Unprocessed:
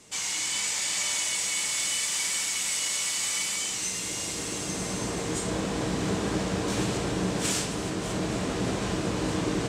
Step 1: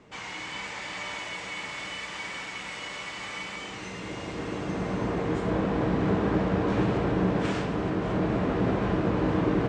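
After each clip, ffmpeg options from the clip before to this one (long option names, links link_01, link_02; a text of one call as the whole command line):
ffmpeg -i in.wav -af "lowpass=1800,volume=3.5dB" out.wav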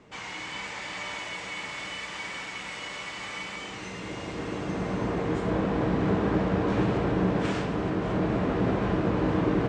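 ffmpeg -i in.wav -af anull out.wav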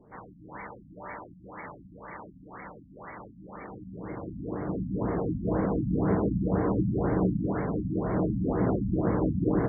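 ffmpeg -i in.wav -af "adynamicsmooth=sensitivity=3.5:basefreq=1100,afftfilt=real='re*lt(b*sr/1024,270*pow(2300/270,0.5+0.5*sin(2*PI*2*pts/sr)))':imag='im*lt(b*sr/1024,270*pow(2300/270,0.5+0.5*sin(2*PI*2*pts/sr)))':win_size=1024:overlap=0.75" out.wav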